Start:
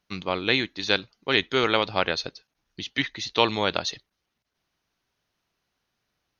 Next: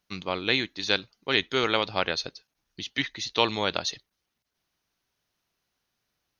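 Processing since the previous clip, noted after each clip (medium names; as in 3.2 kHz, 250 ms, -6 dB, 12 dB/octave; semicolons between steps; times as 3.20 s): treble shelf 5.9 kHz +7.5 dB; trim -3 dB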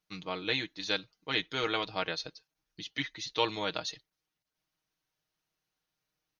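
comb 6.4 ms; trim -8 dB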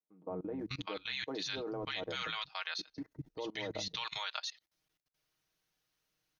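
three bands offset in time mids, lows, highs 190/590 ms, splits 190/850 Hz; level held to a coarse grid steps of 22 dB; trim +5 dB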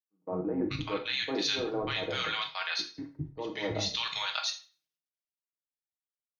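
on a send at -3.5 dB: reverberation RT60 0.50 s, pre-delay 6 ms; on the sum: three bands expanded up and down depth 100%; trim +5.5 dB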